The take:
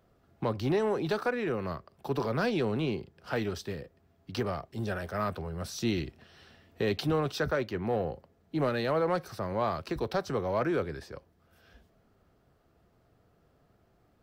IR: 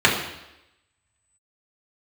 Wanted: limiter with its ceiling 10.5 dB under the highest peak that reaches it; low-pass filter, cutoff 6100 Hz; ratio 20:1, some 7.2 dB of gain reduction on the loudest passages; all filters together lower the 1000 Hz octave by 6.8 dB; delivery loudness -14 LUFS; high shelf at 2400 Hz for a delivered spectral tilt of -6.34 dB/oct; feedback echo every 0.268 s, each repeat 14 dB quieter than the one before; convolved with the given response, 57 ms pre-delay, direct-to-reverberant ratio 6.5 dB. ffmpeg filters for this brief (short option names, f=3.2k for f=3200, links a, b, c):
-filter_complex "[0:a]lowpass=6.1k,equalizer=f=1k:t=o:g=-8,highshelf=f=2.4k:g=-7.5,acompressor=threshold=-32dB:ratio=20,alimiter=level_in=8.5dB:limit=-24dB:level=0:latency=1,volume=-8.5dB,aecho=1:1:268|536:0.2|0.0399,asplit=2[a][b];[1:a]atrim=start_sample=2205,adelay=57[c];[b][c]afir=irnorm=-1:irlink=0,volume=-28.5dB[d];[a][d]amix=inputs=2:normalize=0,volume=27dB"